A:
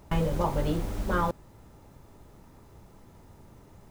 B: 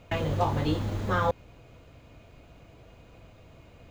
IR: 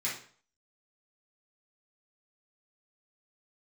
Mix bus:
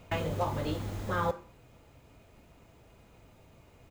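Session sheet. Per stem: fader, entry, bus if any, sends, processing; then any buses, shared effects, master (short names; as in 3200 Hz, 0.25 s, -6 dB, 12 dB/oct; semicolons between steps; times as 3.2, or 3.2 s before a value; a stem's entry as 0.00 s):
-7.5 dB, 0.00 s, send -5 dB, low shelf 150 Hz -9.5 dB; tape flanging out of phase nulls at 1.1 Hz, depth 7.9 ms
-0.5 dB, 0.4 ms, no send, high shelf 12000 Hz +9 dB; auto duck -6 dB, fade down 0.30 s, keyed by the first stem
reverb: on, RT60 0.50 s, pre-delay 3 ms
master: dry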